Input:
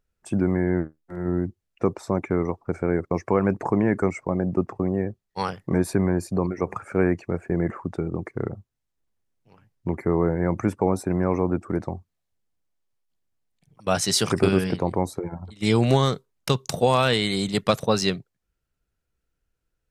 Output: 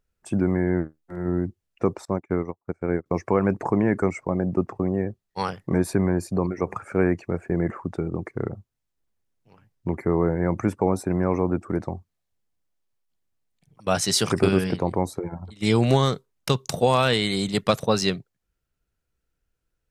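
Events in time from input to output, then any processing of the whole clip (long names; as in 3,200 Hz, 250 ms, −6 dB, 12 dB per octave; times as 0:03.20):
0:02.05–0:03.06: expander for the loud parts 2.5 to 1, over −38 dBFS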